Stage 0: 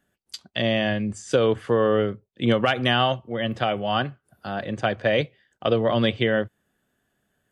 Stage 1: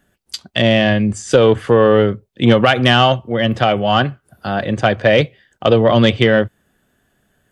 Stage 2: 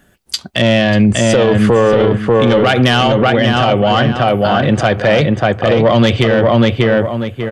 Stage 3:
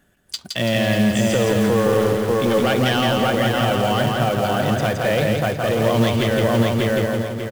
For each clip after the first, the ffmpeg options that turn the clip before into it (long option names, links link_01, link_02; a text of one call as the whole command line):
ffmpeg -i in.wav -af "lowshelf=frequency=70:gain=7,acontrast=87,volume=2.5dB" out.wav
ffmpeg -i in.wav -filter_complex "[0:a]asoftclip=type=tanh:threshold=-4.5dB,asplit=2[link_01][link_02];[link_02]adelay=591,lowpass=frequency=2800:poles=1,volume=-4dB,asplit=2[link_03][link_04];[link_04]adelay=591,lowpass=frequency=2800:poles=1,volume=0.28,asplit=2[link_05][link_06];[link_06]adelay=591,lowpass=frequency=2800:poles=1,volume=0.28,asplit=2[link_07][link_08];[link_08]adelay=591,lowpass=frequency=2800:poles=1,volume=0.28[link_09];[link_03][link_05][link_07][link_09]amix=inputs=4:normalize=0[link_10];[link_01][link_10]amix=inputs=2:normalize=0,alimiter=level_in=12.5dB:limit=-1dB:release=50:level=0:latency=1,volume=-3dB" out.wav
ffmpeg -i in.wav -filter_complex "[0:a]acrusher=bits=4:mode=log:mix=0:aa=0.000001,asplit=2[link_01][link_02];[link_02]aecho=0:1:167|334|501|668|835:0.708|0.297|0.125|0.0525|0.022[link_03];[link_01][link_03]amix=inputs=2:normalize=0,volume=-9dB" out.wav